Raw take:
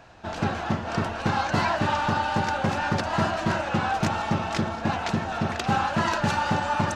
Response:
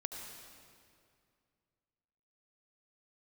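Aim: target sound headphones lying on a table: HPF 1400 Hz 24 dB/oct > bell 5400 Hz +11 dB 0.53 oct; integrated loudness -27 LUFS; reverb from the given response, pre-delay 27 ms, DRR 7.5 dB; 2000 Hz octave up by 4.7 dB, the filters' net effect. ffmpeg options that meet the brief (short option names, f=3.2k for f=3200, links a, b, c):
-filter_complex "[0:a]equalizer=f=2k:t=o:g=7.5,asplit=2[a][b];[1:a]atrim=start_sample=2205,adelay=27[c];[b][c]afir=irnorm=-1:irlink=0,volume=-7dB[d];[a][d]amix=inputs=2:normalize=0,highpass=f=1.4k:w=0.5412,highpass=f=1.4k:w=1.3066,equalizer=f=5.4k:t=o:w=0.53:g=11,volume=-0.5dB"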